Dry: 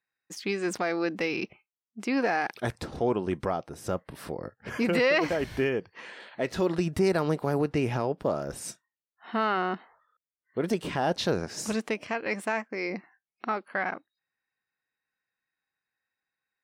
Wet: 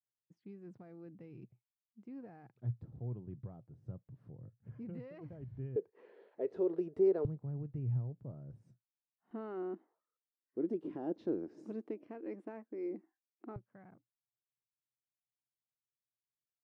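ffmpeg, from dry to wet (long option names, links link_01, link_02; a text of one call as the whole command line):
ffmpeg -i in.wav -af "asetnsamples=nb_out_samples=441:pad=0,asendcmd='5.76 bandpass f 420;7.25 bandpass f 120;9.31 bandpass f 320;13.56 bandpass f 120',bandpass=frequency=120:width_type=q:width=5.5:csg=0" out.wav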